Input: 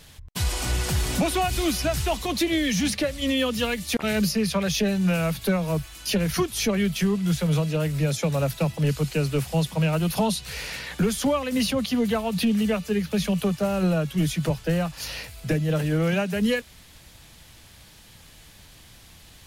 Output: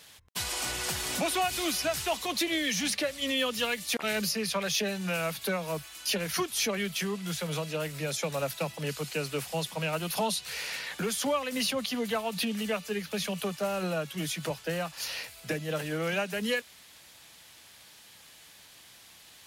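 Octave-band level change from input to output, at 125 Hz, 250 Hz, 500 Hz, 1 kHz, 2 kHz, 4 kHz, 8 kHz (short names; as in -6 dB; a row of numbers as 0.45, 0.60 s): -14.0, -11.0, -5.5, -3.5, -2.0, -1.5, -1.5 dB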